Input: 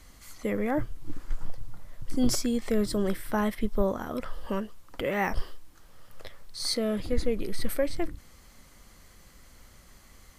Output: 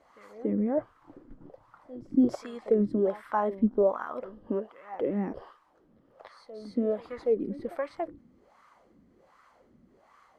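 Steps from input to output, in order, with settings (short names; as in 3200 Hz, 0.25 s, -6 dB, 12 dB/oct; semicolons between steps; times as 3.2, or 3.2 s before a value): pre-echo 0.284 s -16 dB; wah 1.3 Hz 230–1200 Hz, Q 3.3; gain +8 dB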